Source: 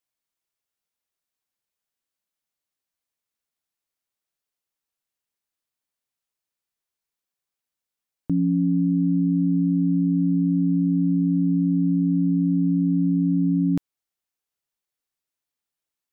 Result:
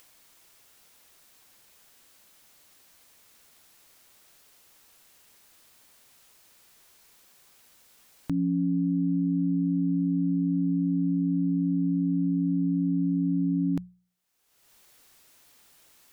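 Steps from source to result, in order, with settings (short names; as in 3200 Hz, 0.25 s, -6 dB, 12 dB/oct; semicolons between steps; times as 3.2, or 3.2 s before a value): notches 60/120/180 Hz; upward compressor, threshold -28 dBFS; gain -4.5 dB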